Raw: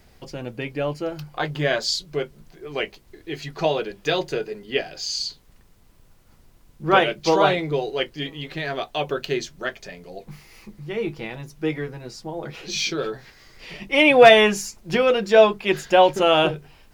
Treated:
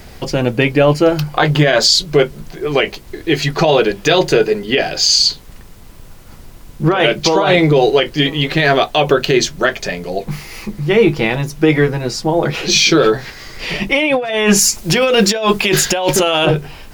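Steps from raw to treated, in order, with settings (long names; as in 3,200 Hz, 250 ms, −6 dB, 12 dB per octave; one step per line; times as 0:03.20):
0:14.59–0:16.46: high-shelf EQ 3,100 Hz +10 dB
compressor whose output falls as the input rises −23 dBFS, ratio −1
boost into a limiter +14 dB
level −1 dB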